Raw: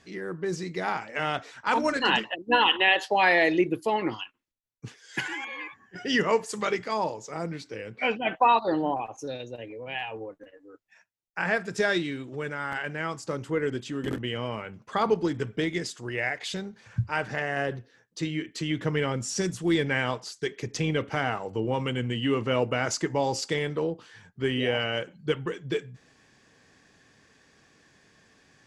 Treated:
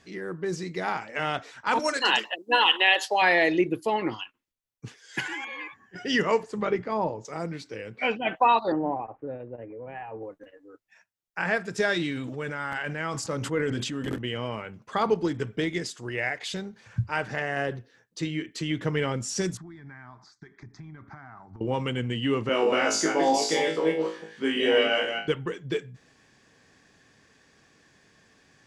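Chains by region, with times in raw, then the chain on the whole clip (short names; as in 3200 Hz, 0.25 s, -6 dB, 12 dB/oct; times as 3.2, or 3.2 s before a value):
1.79–3.22 HPF 170 Hz 6 dB/oct + tone controls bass -13 dB, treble +9 dB
6.43–7.25 LPF 2100 Hz 6 dB/oct + tilt -2 dB/oct
8.72–10.23 switching dead time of 0.075 ms + Bessel low-pass 1200 Hz, order 6
11.94–14.09 notch 380 Hz, Q 5.9 + sustainer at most 29 dB/s
19.57–21.61 compressor, threshold -37 dBFS + air absorption 210 m + fixed phaser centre 1200 Hz, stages 4
22.49–25.28 reverse delay 0.159 s, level -3 dB + HPF 210 Hz 24 dB/oct + flutter echo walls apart 3.2 m, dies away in 0.35 s
whole clip: dry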